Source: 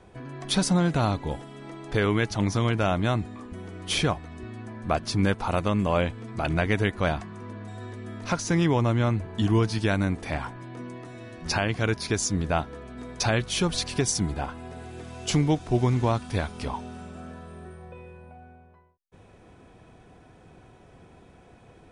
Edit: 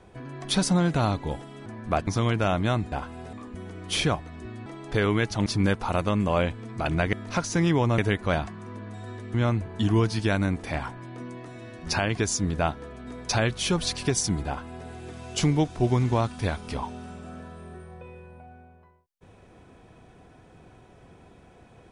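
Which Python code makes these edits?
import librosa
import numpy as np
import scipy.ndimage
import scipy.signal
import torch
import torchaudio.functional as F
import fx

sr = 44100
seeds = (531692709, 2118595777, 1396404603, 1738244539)

y = fx.edit(x, sr, fx.swap(start_s=1.66, length_s=0.8, other_s=4.64, other_length_s=0.41),
    fx.move(start_s=8.08, length_s=0.85, to_s=6.72),
    fx.cut(start_s=11.77, length_s=0.32),
    fx.duplicate(start_s=14.38, length_s=0.41, to_s=3.31), tone=tone)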